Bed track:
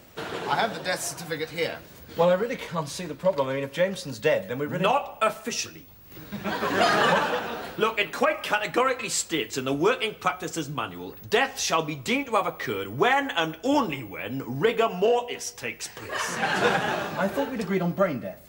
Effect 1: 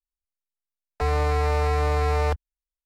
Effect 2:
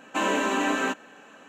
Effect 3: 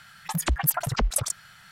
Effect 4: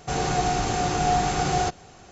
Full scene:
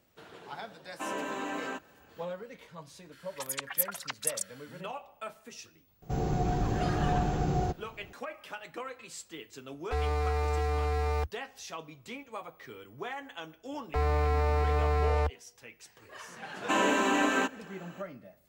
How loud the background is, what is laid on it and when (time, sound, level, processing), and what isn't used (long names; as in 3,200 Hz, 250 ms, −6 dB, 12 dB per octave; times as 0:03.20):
bed track −17.5 dB
0:00.85: mix in 2 −13.5 dB + parametric band 680 Hz +4 dB 2.4 octaves
0:03.11: mix in 3 −5 dB, fades 0.02 s + high-pass filter 1,400 Hz
0:06.02: mix in 4 −9.5 dB + tilt shelving filter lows +9.5 dB, about 700 Hz
0:08.91: mix in 1 −9 dB + comb filter 2.5 ms, depth 43%
0:12.94: mix in 1 −4.5 dB + high-shelf EQ 3,500 Hz −7.5 dB
0:16.54: mix in 2 −1.5 dB